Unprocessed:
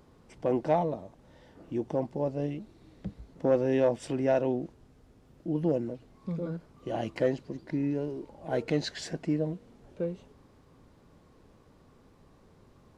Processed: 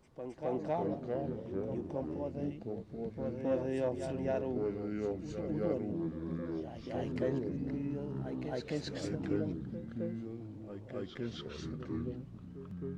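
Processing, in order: echoes that change speed 0.217 s, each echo -4 st, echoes 3; reverse echo 0.266 s -7 dB; gain -9 dB

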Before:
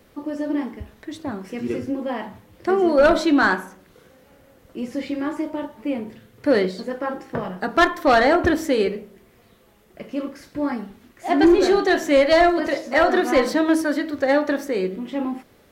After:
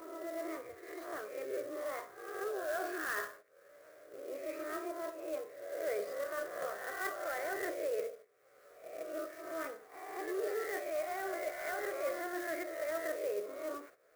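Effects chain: spectral swells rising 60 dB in 0.57 s; HPF 530 Hz 12 dB/oct; bell 5800 Hz -14 dB 2.7 oct; reverse; compressor 8:1, threshold -30 dBFS, peak gain reduction 16 dB; reverse; pre-echo 0.161 s -13 dB; gate -50 dBFS, range -13 dB; wide varispeed 1.11×; fixed phaser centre 880 Hz, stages 6; upward compressor, threshold -40 dBFS; clock jitter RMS 0.034 ms; gain -2.5 dB

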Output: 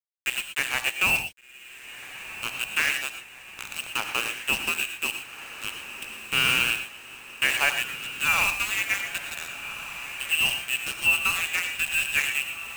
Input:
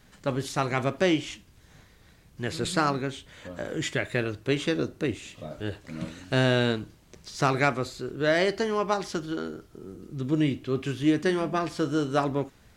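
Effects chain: inverted band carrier 3000 Hz; sample gate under -24.5 dBFS; on a send: diffused feedback echo 1.506 s, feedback 62%, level -12 dB; on the sum: non-linear reverb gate 0.14 s rising, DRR 7.5 dB

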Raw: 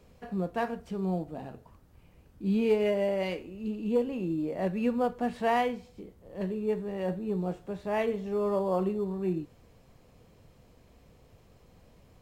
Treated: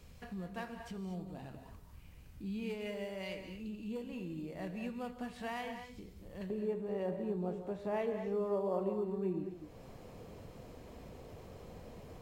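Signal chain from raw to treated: bell 480 Hz -10.5 dB 2.9 oct, from 6.5 s +5.5 dB; compressor 2:1, threshold -53 dBFS, peak gain reduction 18.5 dB; non-linear reverb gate 0.26 s rising, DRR 7 dB; gain +5 dB

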